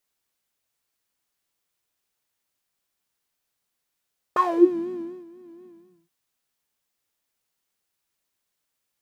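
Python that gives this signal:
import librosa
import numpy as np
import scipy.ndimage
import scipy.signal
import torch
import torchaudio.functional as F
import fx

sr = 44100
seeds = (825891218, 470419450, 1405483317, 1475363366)

y = fx.sub_patch_vibrato(sr, seeds[0], note=65, wave='square', wave2='saw', interval_st=12, detune_cents=16, level2_db=-10.5, sub_db=-28, noise_db=-2.5, kind='bandpass', cutoff_hz=160.0, q=11.0, env_oct=3.0, env_decay_s=0.34, env_sustain_pct=20, attack_ms=2.4, decay_s=0.89, sustain_db=-23.0, release_s=0.44, note_s=1.29, lfo_hz=4.1, vibrato_cents=85)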